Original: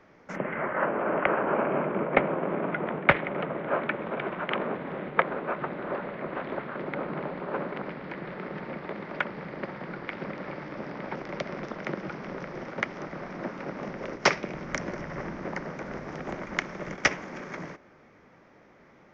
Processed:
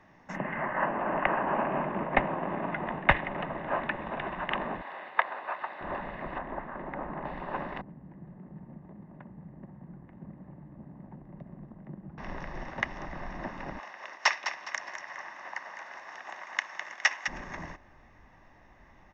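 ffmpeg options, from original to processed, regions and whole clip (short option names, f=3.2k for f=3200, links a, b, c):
-filter_complex "[0:a]asettb=1/sr,asplit=3[a][b][c];[a]atrim=end=4.814[d];[b]atrim=start=4.81:end=5.81,asetpts=PTS-STARTPTS,afade=t=in:d=0.004:c=qsin,afade=t=out:st=0.996:d=0.004:c=qsin,highpass=660,equalizer=f=4.4k:w=5.2:g=6[e];[c]atrim=start=5.806[f];[d][e]acrossfade=d=0.004:c1=hsin:c2=qsin[g];[g][f]acrossfade=d=0.004:c1=qsin:c2=hsin,asettb=1/sr,asplit=3[h][i][j];[h]atrim=end=6.384[k];[i]atrim=start=6.38:end=7.25,asetpts=PTS-STARTPTS,afade=t=in:d=0.004:c=qsin,afade=t=out:st=0.866:d=0.004:c=qsin,lowpass=1.6k,equalizer=f=110:t=o:w=0.58:g=-9[l];[j]atrim=start=7.246[m];[k][l]acrossfade=d=0.004:c1=hsin:c2=qsin[n];[n][m]acrossfade=d=0.004:c1=qsin:c2=hsin,asettb=1/sr,asplit=3[o][p][q];[o]atrim=end=7.814[r];[p]atrim=start=7.81:end=12.18,asetpts=PTS-STARTPTS,afade=t=in:d=0.004:c=qsin,afade=t=out:st=4.366:d=0.004:c=qsin,bandpass=f=160:t=q:w=1.5,aemphasis=mode=reproduction:type=75kf[s];[q]atrim=start=12.176[t];[r][s]acrossfade=d=0.004:c1=hsin:c2=qsin[u];[u][t]acrossfade=d=0.004:c1=qsin:c2=hsin,asettb=1/sr,asplit=3[v][w][x];[v]atrim=end=13.794[y];[w]atrim=start=13.79:end=17.28,asetpts=PTS-STARTPTS,afade=t=in:d=0.004:c=qsin,afade=t=out:st=3.486:d=0.004:c=qsin,highpass=930,aecho=1:1:206|412|618|824:0.355|0.124|0.0435|0.0152,atrim=end_sample=153909[z];[x]atrim=start=17.276[aa];[y][z]acrossfade=d=0.004:c1=hsin:c2=qsin[ab];[ab][aa]acrossfade=d=0.004:c1=qsin:c2=hsin,bandreject=f=4.6k:w=12,aecho=1:1:1.1:0.6,asubboost=boost=8.5:cutoff=54,volume=-2dB"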